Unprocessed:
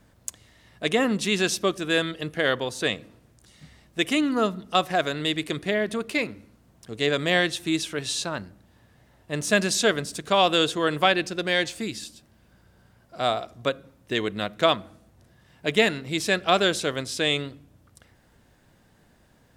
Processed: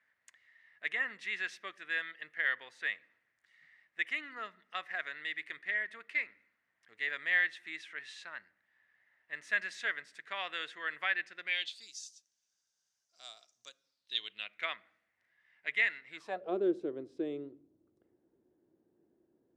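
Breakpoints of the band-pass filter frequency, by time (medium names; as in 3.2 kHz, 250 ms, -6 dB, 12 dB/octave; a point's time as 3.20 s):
band-pass filter, Q 6.3
11.43 s 1.9 kHz
11.93 s 6.1 kHz
13.73 s 6.1 kHz
14.68 s 2 kHz
16.07 s 2 kHz
16.55 s 350 Hz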